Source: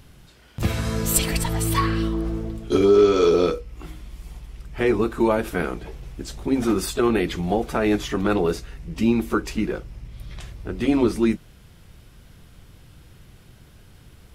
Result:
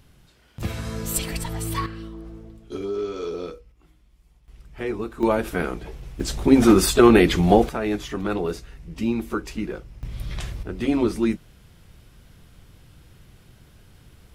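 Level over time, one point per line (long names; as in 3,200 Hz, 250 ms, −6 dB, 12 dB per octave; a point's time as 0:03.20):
−5.5 dB
from 0:01.86 −13 dB
from 0:03.72 −19.5 dB
from 0:04.48 −8 dB
from 0:05.23 −0.5 dB
from 0:06.20 +7 dB
from 0:07.69 −4.5 dB
from 0:10.03 +6 dB
from 0:10.63 −2 dB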